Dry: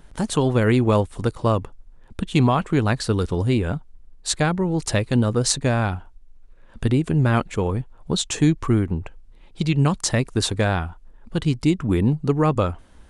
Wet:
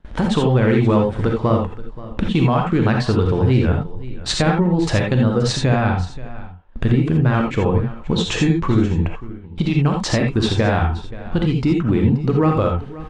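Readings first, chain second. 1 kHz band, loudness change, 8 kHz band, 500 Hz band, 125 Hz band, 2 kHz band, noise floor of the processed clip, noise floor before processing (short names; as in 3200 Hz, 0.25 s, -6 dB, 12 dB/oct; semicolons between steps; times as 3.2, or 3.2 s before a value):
+3.0 dB, +3.5 dB, -5.0 dB, +3.5 dB, +4.0 dB, +3.0 dB, -35 dBFS, -48 dBFS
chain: LPF 3400 Hz 12 dB/oct; gate with hold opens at -37 dBFS; wow and flutter 29 cents; in parallel at -8 dB: overloaded stage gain 13.5 dB; on the sum: compressor 3:1, threshold -26 dBFS, peak gain reduction 11.5 dB; on a send: echo 0.528 s -17.5 dB; on the sum: non-linear reverb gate 0.1 s rising, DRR 1.5 dB; gain +7.5 dB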